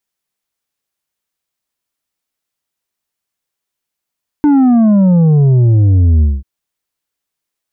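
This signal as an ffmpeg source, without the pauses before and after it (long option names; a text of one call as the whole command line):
ffmpeg -f lavfi -i "aevalsrc='0.473*clip((1.99-t)/0.21,0,1)*tanh(2*sin(2*PI*300*1.99/log(65/300)*(exp(log(65/300)*t/1.99)-1)))/tanh(2)':duration=1.99:sample_rate=44100" out.wav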